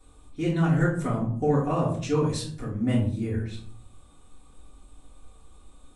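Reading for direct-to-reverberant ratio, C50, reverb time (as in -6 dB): -7.0 dB, 5.5 dB, 0.55 s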